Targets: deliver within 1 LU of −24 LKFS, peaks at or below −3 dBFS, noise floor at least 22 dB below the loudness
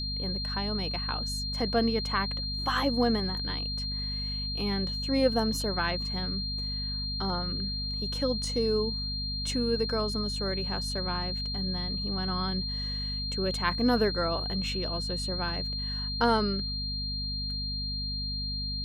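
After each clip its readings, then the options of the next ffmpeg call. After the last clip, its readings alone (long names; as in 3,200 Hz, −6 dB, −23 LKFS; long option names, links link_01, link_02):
mains hum 50 Hz; hum harmonics up to 250 Hz; level of the hum −33 dBFS; interfering tone 4,200 Hz; level of the tone −33 dBFS; integrated loudness −29.5 LKFS; sample peak −11.5 dBFS; target loudness −24.0 LKFS
→ -af "bandreject=frequency=50:width_type=h:width=4,bandreject=frequency=100:width_type=h:width=4,bandreject=frequency=150:width_type=h:width=4,bandreject=frequency=200:width_type=h:width=4,bandreject=frequency=250:width_type=h:width=4"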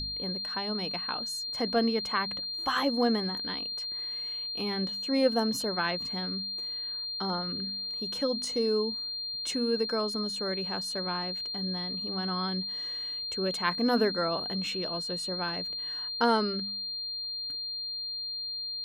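mains hum none found; interfering tone 4,200 Hz; level of the tone −33 dBFS
→ -af "bandreject=frequency=4200:width=30"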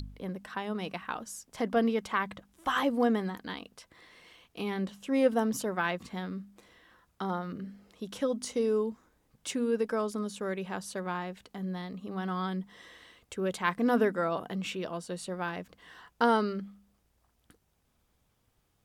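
interfering tone none found; integrated loudness −32.0 LKFS; sample peak −11.5 dBFS; target loudness −24.0 LKFS
→ -af "volume=8dB"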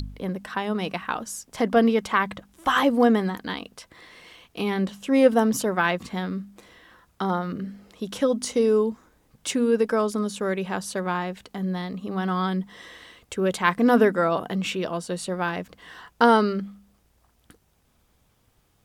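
integrated loudness −24.5 LKFS; sample peak −3.5 dBFS; background noise floor −65 dBFS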